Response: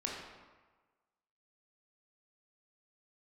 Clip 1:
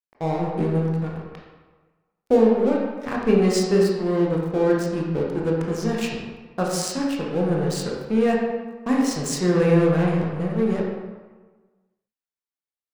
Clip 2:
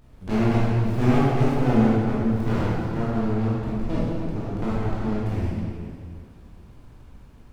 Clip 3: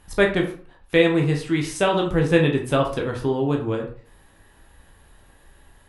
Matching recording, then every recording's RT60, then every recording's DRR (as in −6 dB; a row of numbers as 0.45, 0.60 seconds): 1; 1.3, 2.1, 0.45 seconds; −3.0, −8.5, 1.0 decibels